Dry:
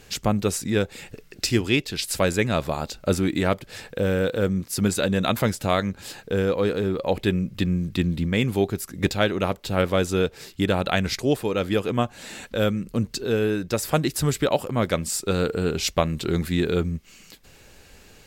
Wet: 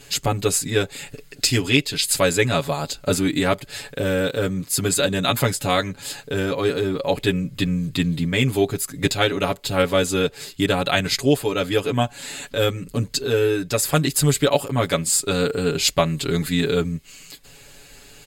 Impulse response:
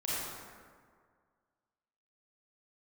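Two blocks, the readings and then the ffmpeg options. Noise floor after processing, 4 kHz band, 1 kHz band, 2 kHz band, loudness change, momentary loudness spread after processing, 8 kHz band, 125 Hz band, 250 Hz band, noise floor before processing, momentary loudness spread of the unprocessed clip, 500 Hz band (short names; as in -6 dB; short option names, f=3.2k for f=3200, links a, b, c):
-47 dBFS, +6.5 dB, +3.0 dB, +4.0 dB, +3.0 dB, 7 LU, +8.0 dB, +2.0 dB, +1.0 dB, -51 dBFS, 5 LU, +2.5 dB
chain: -af "equalizer=f=7.6k:w=0.38:g=7,bandreject=f=5.7k:w=6.7,aecho=1:1:7.1:0.97,volume=-1dB"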